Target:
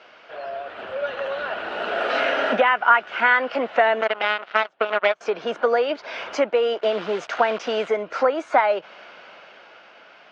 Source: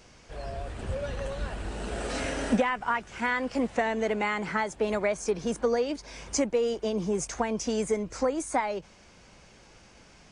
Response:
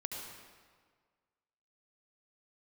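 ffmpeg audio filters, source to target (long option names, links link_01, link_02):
-filter_complex "[0:a]asplit=2[link_01][link_02];[link_02]acompressor=threshold=-39dB:ratio=6,volume=1dB[link_03];[link_01][link_03]amix=inputs=2:normalize=0,asettb=1/sr,asplit=3[link_04][link_05][link_06];[link_04]atrim=end=4.014[link_07];[link_05]atrim=start=4.01:end=5.21,asetpts=PTS-STARTPTS,afade=type=in:duration=0.004:curve=qsin,afade=type=out:start_time=1.196:duration=0.004:curve=qsin,aeval=exprs='0.299*(cos(1*acos(clip(val(0)/0.299,-1,1)))-cos(1*PI/2))+0.0106*(cos(3*acos(clip(val(0)/0.299,-1,1)))-cos(3*PI/2))+0.0422*(cos(7*acos(clip(val(0)/0.299,-1,1)))-cos(7*PI/2))':channel_layout=same[link_08];[link_06]atrim=start=5.206[link_09];[link_07][link_08]acrossfade=duration=0.004:curve1=hsin:curve2=qsin[link_10];[link_10][link_09]acrossfade=duration=0.004:curve1=qsin:curve2=hsin,asettb=1/sr,asplit=3[link_11][link_12][link_13];[link_11]atrim=end=6.784[link_14];[link_12]atrim=start=6.78:end=7.89,asetpts=PTS-STARTPTS,afade=type=in:duration=0.004:curve=qsin,afade=type=out:start_time=1.106:duration=0.004:curve=qsin,acrusher=bits=7:dc=4:mix=0:aa=0.000001[link_15];[link_13]atrim=start=7.886[link_16];[link_14][link_15]acrossfade=duration=0.004:curve1=hsin:curve2=qsin[link_17];[link_17][link_16]acrossfade=duration=0.004:curve1=qsin:curve2=hsin,dynaudnorm=framelen=140:gausssize=17:maxgain=6.5dB,highpass=480,equalizer=frequency=640:width_type=q:width=4:gain=7,equalizer=frequency=1400:width_type=q:width=4:gain=9,equalizer=frequency=2900:width_type=q:width=4:gain=4,lowpass=frequency=3700:width=0.5412,lowpass=frequency=3700:width=1.3066"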